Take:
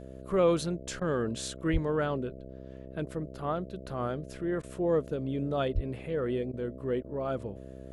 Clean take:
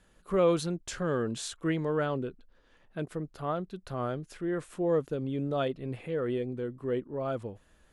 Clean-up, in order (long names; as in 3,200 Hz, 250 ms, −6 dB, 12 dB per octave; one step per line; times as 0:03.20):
hum removal 65.4 Hz, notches 10
0:01.72–0:01.84: high-pass filter 140 Hz 24 dB per octave
0:05.74–0:05.86: high-pass filter 140 Hz 24 dB per octave
repair the gap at 0:01.00/0:04.62/0:06.52/0:07.03, 12 ms